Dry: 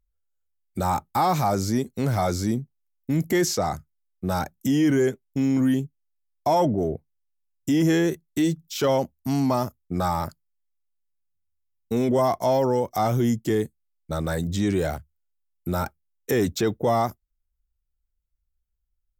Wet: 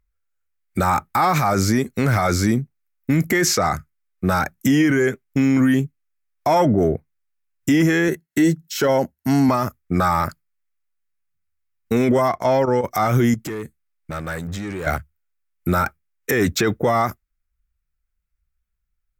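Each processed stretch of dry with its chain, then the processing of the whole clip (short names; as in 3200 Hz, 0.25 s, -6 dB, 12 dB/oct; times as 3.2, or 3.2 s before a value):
8.08–9.49 dynamic EQ 2700 Hz, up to -6 dB, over -44 dBFS, Q 0.96 + notch comb 1200 Hz
12.29–12.84 high shelf 8800 Hz -11.5 dB + level quantiser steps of 11 dB
13.34–14.87 compressor 12:1, threshold -31 dBFS + hard clip -31.5 dBFS
whole clip: band shelf 1700 Hz +8.5 dB 1.3 oct; spectral noise reduction 6 dB; maximiser +15.5 dB; gain -8 dB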